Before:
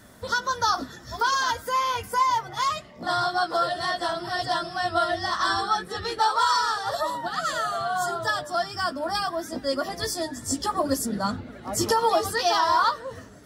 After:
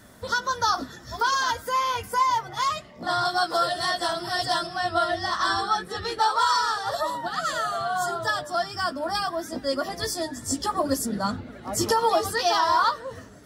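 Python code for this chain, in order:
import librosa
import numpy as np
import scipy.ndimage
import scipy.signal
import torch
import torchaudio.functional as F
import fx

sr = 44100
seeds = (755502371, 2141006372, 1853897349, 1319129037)

y = fx.high_shelf(x, sr, hz=4800.0, db=9.0, at=(3.25, 4.67))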